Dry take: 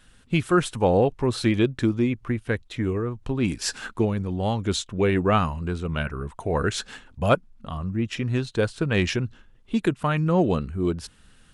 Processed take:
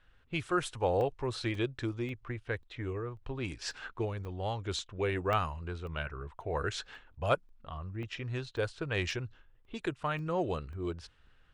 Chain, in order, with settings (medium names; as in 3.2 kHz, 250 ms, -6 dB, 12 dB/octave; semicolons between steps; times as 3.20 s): level-controlled noise filter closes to 2.5 kHz, open at -15.5 dBFS; peaking EQ 210 Hz -13.5 dB 0.88 oct; crackling interface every 0.54 s, samples 64, zero, from 0.47 s; trim -7.5 dB